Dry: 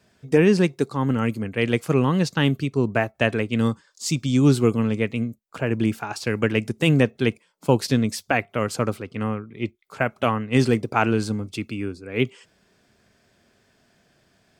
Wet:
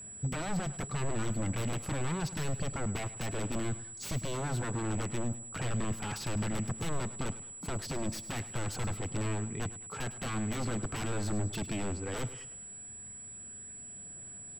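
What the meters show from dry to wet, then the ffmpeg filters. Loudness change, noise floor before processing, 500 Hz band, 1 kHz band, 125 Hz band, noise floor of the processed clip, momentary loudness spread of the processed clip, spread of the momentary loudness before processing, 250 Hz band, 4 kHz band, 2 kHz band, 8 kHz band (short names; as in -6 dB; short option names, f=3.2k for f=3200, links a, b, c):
-13.5 dB, -64 dBFS, -17.0 dB, -12.0 dB, -10.5 dB, -47 dBFS, 9 LU, 10 LU, -15.5 dB, -11.0 dB, -14.5 dB, +0.5 dB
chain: -filter_complex "[0:a]aphaser=in_gain=1:out_gain=1:delay=3:decay=0.23:speed=0.14:type=triangular,acompressor=threshold=-25dB:ratio=5,aeval=exprs='0.0282*(abs(mod(val(0)/0.0282+3,4)-2)-1)':c=same,bass=f=250:g=9,treble=f=4k:g=-5,asplit=2[a][b];[b]aecho=0:1:104|208|312|416:0.178|0.0818|0.0376|0.0173[c];[a][c]amix=inputs=2:normalize=0,aeval=exprs='val(0)+0.00794*sin(2*PI*7800*n/s)':c=same,volume=-2dB"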